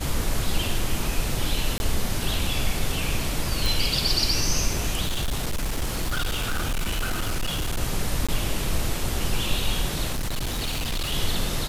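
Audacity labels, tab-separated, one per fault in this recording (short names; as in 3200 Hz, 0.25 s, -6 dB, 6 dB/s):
1.780000	1.800000	gap 21 ms
3.660000	3.660000	pop
5.040000	7.790000	clipped -21.5 dBFS
8.270000	8.290000	gap 16 ms
10.120000	11.130000	clipped -23.5 dBFS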